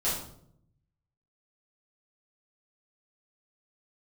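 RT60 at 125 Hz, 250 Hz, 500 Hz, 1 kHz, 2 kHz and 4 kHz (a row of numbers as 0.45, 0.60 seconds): 1.3, 1.0, 0.80, 0.55, 0.45, 0.45 seconds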